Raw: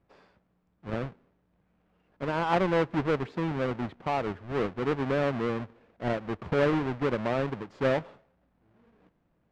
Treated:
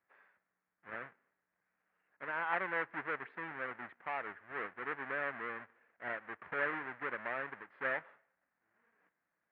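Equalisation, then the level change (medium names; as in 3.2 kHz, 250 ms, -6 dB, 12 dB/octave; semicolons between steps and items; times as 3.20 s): band-pass filter 1.8 kHz, Q 3; distance through air 460 m; +5.5 dB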